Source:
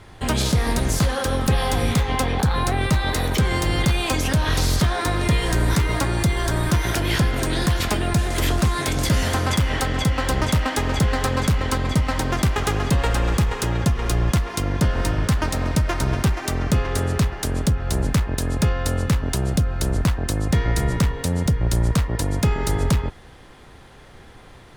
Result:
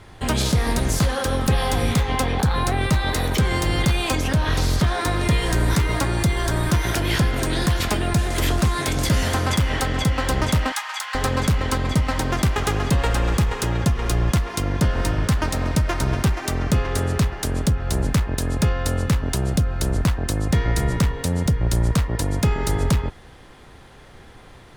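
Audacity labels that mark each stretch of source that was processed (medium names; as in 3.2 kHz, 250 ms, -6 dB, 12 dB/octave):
4.150000	4.870000	treble shelf 4.1 kHz -5.5 dB
10.720000	11.150000	steep high-pass 870 Hz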